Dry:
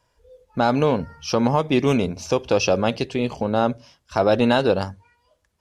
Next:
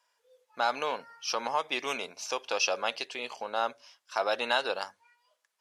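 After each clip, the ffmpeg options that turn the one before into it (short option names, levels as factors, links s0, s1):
-af "highpass=940,volume=0.708"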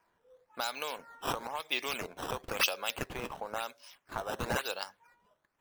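-filter_complex "[0:a]acrossover=split=2300[s0][s1];[s0]acompressor=threshold=0.0141:ratio=6[s2];[s1]acrusher=samples=11:mix=1:aa=0.000001:lfo=1:lforange=17.6:lforate=0.99[s3];[s2][s3]amix=inputs=2:normalize=0,volume=1.19"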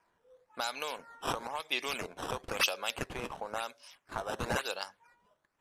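-af "lowpass=f=12000:w=0.5412,lowpass=f=12000:w=1.3066"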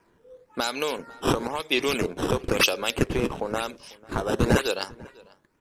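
-filter_complex "[0:a]lowshelf=f=520:t=q:w=1.5:g=8,asplit=2[s0][s1];[s1]adelay=495.6,volume=0.0708,highshelf=f=4000:g=-11.2[s2];[s0][s2]amix=inputs=2:normalize=0,volume=2.51"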